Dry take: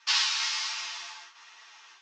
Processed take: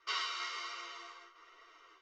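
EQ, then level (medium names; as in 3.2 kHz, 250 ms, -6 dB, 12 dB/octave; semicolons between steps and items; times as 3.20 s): boxcar filter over 52 samples; peaking EQ 260 Hz -13 dB 0.27 oct; +12.5 dB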